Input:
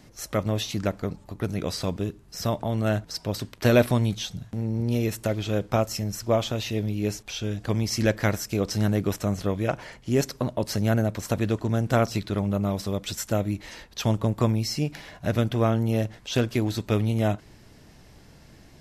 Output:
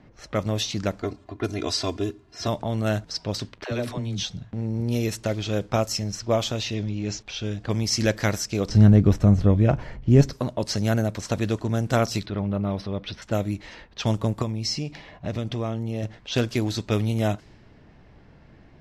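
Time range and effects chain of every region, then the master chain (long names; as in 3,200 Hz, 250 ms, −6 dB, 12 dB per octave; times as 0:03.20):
0:01.02–0:02.48: high-pass filter 99 Hz + comb filter 2.9 ms, depth 91%
0:03.64–0:04.23: downward compressor 16 to 1, threshold −23 dBFS + all-pass dispersion lows, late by 73 ms, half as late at 410 Hz
0:06.74–0:07.21: Butterworth low-pass 7,500 Hz 96 dB per octave + parametric band 450 Hz −4 dB 0.34 octaves + transient designer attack −9 dB, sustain +1 dB
0:08.69–0:10.33: RIAA equalisation playback + double-tracking delay 14 ms −14 dB
0:12.26–0:13.22: moving average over 6 samples + transient designer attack −4 dB, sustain +1 dB
0:14.42–0:16.03: parametric band 1,500 Hz −8.5 dB 0.25 octaves + downward compressor 3 to 1, threshold −25 dBFS
whole clip: low-pass that shuts in the quiet parts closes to 2,200 Hz, open at −20 dBFS; dynamic equaliser 5,400 Hz, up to +6 dB, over −47 dBFS, Q 0.93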